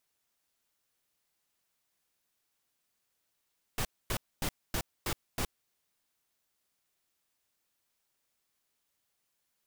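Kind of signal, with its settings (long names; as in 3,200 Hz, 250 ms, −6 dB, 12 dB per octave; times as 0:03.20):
noise bursts pink, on 0.07 s, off 0.25 s, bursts 6, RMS −32 dBFS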